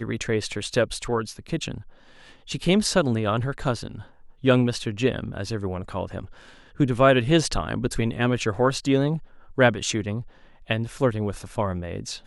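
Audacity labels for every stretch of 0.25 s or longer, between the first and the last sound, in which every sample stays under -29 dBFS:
1.780000	2.500000	silence
3.950000	4.440000	silence
6.220000	6.800000	silence
9.170000	9.580000	silence
10.210000	10.700000	silence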